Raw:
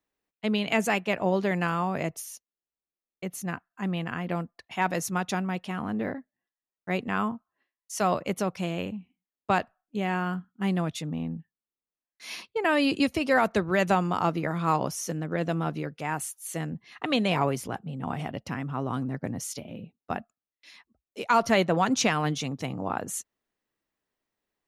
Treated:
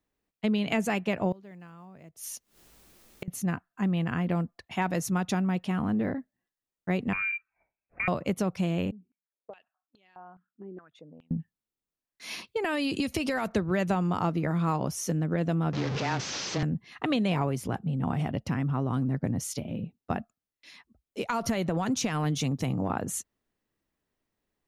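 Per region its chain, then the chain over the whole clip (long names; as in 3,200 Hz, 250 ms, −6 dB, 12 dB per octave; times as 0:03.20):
0:01.32–0:03.28: one scale factor per block 7 bits + upward compression, threshold −31 dBFS + gate with flip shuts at −24 dBFS, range −25 dB
0:07.13–0:08.08: low shelf with overshoot 460 Hz +8.5 dB, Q 1.5 + downward compressor 3 to 1, threshold −30 dBFS + voice inversion scrambler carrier 2,600 Hz
0:08.91–0:11.31: spectral envelope exaggerated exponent 1.5 + downward compressor, threshold −35 dBFS + band-pass on a step sequencer 4.8 Hz 390–4,300 Hz
0:12.47–0:13.49: high-shelf EQ 2,100 Hz +8 dB + downward compressor 5 to 1, threshold −26 dBFS
0:15.73–0:16.63: linear delta modulator 32 kbit/s, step −26.5 dBFS + high-pass filter 170 Hz + frequency shifter −15 Hz
0:21.28–0:22.91: high-shelf EQ 8,900 Hz +9.5 dB + downward compressor 5 to 1, threshold −25 dBFS
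whole clip: low-shelf EQ 280 Hz +10 dB; downward compressor 3 to 1, threshold −25 dBFS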